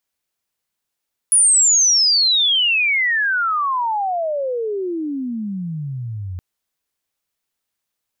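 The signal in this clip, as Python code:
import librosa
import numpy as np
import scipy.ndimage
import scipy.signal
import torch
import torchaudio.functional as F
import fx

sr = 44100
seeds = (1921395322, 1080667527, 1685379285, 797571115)

y = fx.chirp(sr, length_s=5.07, from_hz=10000.0, to_hz=87.0, law='logarithmic', from_db=-9.5, to_db=-25.0)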